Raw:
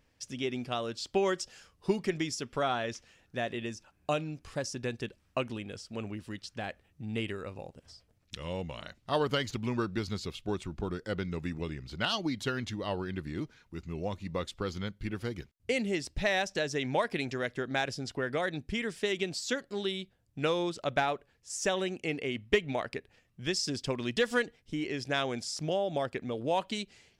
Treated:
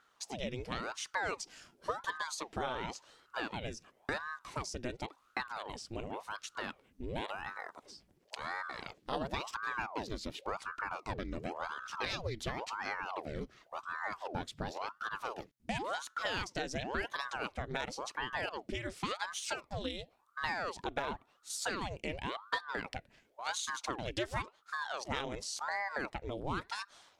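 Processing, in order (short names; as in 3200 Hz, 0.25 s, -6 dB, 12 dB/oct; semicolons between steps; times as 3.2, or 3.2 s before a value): compressor 2:1, threshold -39 dBFS, peak gain reduction 10.5 dB; ring modulator with a swept carrier 760 Hz, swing 85%, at 0.93 Hz; gain +3 dB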